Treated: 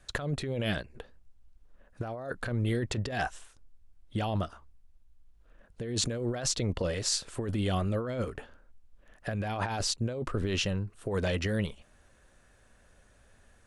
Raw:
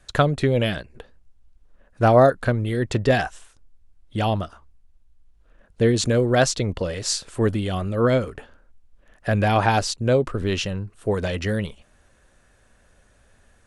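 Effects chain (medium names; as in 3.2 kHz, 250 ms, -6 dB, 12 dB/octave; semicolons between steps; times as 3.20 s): compressor with a negative ratio -24 dBFS, ratio -1; trim -7 dB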